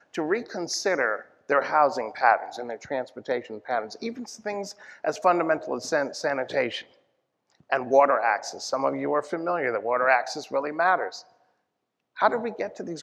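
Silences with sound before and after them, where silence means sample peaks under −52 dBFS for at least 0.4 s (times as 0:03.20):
0:06.98–0:07.50
0:11.35–0:12.16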